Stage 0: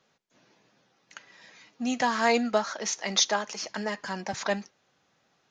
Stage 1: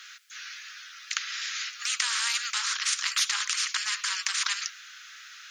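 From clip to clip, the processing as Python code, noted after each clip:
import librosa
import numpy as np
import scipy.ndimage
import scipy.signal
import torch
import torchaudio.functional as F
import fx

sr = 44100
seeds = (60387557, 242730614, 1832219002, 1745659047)

y = scipy.signal.sosfilt(scipy.signal.butter(12, 1300.0, 'highpass', fs=sr, output='sos'), x)
y = fx.spectral_comp(y, sr, ratio=4.0)
y = F.gain(torch.from_numpy(y), 1.5).numpy()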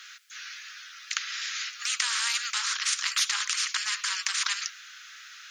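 y = x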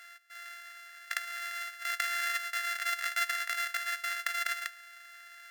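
y = np.r_[np.sort(x[:len(x) // 64 * 64].reshape(-1, 64), axis=1).ravel(), x[len(x) // 64 * 64:]]
y = fx.highpass_res(y, sr, hz=1700.0, q=13.0)
y = F.gain(torch.from_numpy(y), -7.5).numpy()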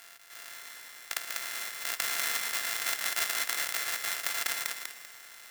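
y = fx.spec_flatten(x, sr, power=0.39)
y = fx.echo_feedback(y, sr, ms=195, feedback_pct=31, wet_db=-3.5)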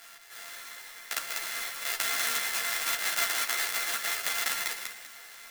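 y = fx.room_shoebox(x, sr, seeds[0], volume_m3=190.0, walls='furnished', distance_m=0.53)
y = fx.ensemble(y, sr)
y = F.gain(torch.from_numpy(y), 5.0).numpy()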